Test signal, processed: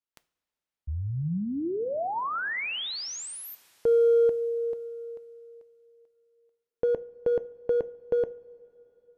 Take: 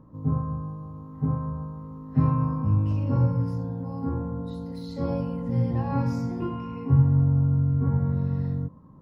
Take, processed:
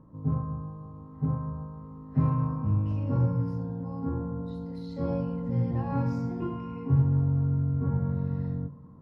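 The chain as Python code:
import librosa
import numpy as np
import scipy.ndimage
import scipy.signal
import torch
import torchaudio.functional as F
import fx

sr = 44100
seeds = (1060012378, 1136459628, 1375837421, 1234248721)

p1 = fx.lowpass(x, sr, hz=3000.0, slope=6)
p2 = np.clip(p1, -10.0 ** (-19.5 / 20.0), 10.0 ** (-19.5 / 20.0))
p3 = p1 + (p2 * librosa.db_to_amplitude(-10.0))
p4 = fx.rev_double_slope(p3, sr, seeds[0], early_s=0.36, late_s=3.8, knee_db=-18, drr_db=13.0)
y = p4 * librosa.db_to_amplitude(-5.0)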